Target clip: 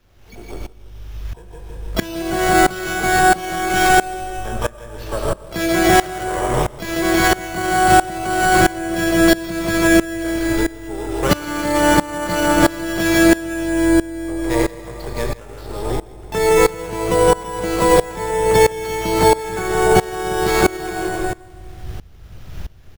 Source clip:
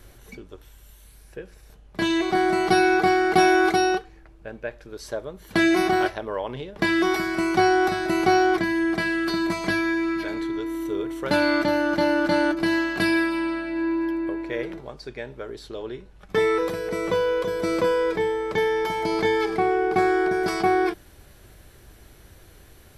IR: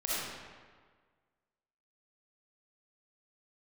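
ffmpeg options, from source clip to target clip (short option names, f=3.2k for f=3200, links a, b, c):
-filter_complex "[0:a]asplit=2[a][b];[1:a]atrim=start_sample=2205,adelay=34[c];[b][c]afir=irnorm=-1:irlink=0,volume=-9.5dB[d];[a][d]amix=inputs=2:normalize=0,asplit=3[e][f][g];[f]asetrate=66075,aresample=44100,atempo=0.66742,volume=-15dB[h];[g]asetrate=88200,aresample=44100,atempo=0.5,volume=-7dB[i];[e][h][i]amix=inputs=3:normalize=0,aecho=1:1:163|326|489|652|815:0.596|0.22|0.0815|0.0302|0.0112,acrossover=split=150[j][k];[j]dynaudnorm=f=490:g=3:m=11dB[l];[l][k]amix=inputs=2:normalize=0,acrusher=samples=5:mix=1:aa=0.000001,alimiter=level_in=9dB:limit=-1dB:release=50:level=0:latency=1,aeval=exprs='val(0)*pow(10,-21*if(lt(mod(-1.5*n/s,1),2*abs(-1.5)/1000),1-mod(-1.5*n/s,1)/(2*abs(-1.5)/1000),(mod(-1.5*n/s,1)-2*abs(-1.5)/1000)/(1-2*abs(-1.5)/1000))/20)':c=same"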